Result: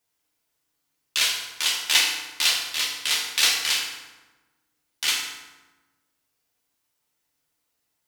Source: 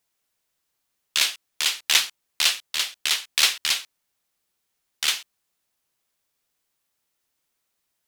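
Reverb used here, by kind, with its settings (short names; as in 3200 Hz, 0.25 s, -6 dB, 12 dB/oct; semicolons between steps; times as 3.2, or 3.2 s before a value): FDN reverb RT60 1.2 s, low-frequency decay 1.3×, high-frequency decay 0.65×, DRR -3 dB; gain -3.5 dB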